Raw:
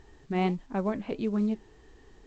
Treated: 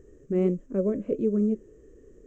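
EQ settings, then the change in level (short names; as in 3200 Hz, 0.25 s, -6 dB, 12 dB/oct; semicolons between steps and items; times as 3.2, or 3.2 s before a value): EQ curve 140 Hz 0 dB, 550 Hz +9 dB, 810 Hz -24 dB, 1200 Hz -9 dB, 2600 Hz -14 dB, 4400 Hz -24 dB, 6400 Hz -1 dB; 0.0 dB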